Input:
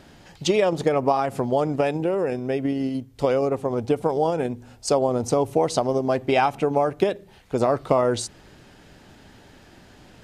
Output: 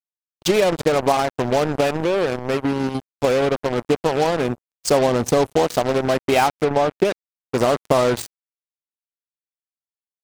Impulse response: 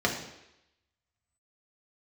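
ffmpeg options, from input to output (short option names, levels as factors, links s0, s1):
-filter_complex "[0:a]asettb=1/sr,asplit=3[s0][s1][s2];[s0]atrim=end=4.414[s3];[s1]atrim=start=4.41:end=5.53,asetpts=PTS-STARTPTS,afade=t=in:d=0.004:c=qsin,afade=t=out:st=1.116:d=0.004:c=qsin,aeval=exprs='val(0)+0.5*0.0398*sgn(val(0))':c=same[s4];[s2]atrim=start=5.526[s5];[s3][s4]acrossfade=d=0.004:c1=hsin:c2=qsin[s6];[s6][s5]acrossfade=d=0.004:c1=qsin:c2=hsin,acrusher=bits=3:mix=0:aa=0.5,asettb=1/sr,asplit=3[s7][s8][s9];[s7]atrim=end=6.644[s10];[s8]atrim=start=6.64:end=7.05,asetpts=PTS-STARTPTS,afade=t=in:d=0.004:c=qsin,afade=t=out:st=0.406:d=0.004:c=qsin,highshelf=f=4800:g=-11.5[s11];[s9]atrim=start=7.046[s12];[s10][s11]acrossfade=d=0.004:c1=hsin:c2=qsin[s13];[s13][s12]acrossfade=d=0.004:c1=qsin:c2=hsin,volume=1.33"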